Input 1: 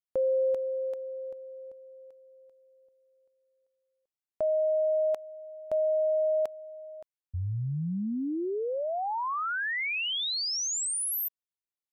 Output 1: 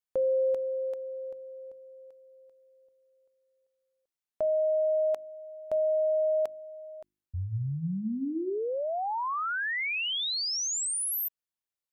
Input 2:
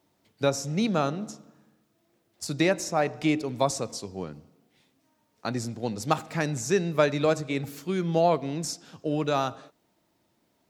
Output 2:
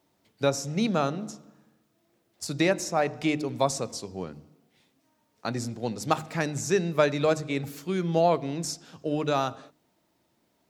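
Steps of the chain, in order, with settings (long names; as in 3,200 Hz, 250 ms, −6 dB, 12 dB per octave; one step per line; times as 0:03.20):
hum removal 50.76 Hz, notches 7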